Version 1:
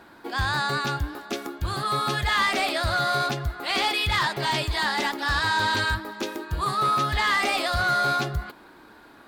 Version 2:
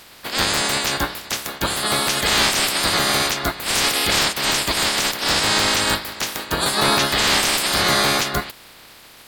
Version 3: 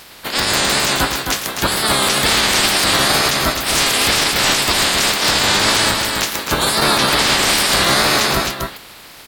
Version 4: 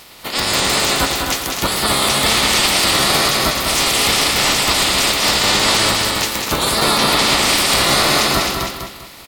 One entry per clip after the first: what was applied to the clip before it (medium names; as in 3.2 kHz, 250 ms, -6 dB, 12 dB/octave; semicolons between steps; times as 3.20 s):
spectral peaks clipped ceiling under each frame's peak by 28 dB; trim +5.5 dB
wow and flutter 110 cents; multi-tap echo 111/262 ms -11/-6 dB; loudness maximiser +8 dB; trim -3.5 dB
band-stop 1.6 kHz, Q 7.8; bit crusher 10-bit; on a send: feedback delay 198 ms, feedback 32%, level -5 dB; on the sum: trim -1 dB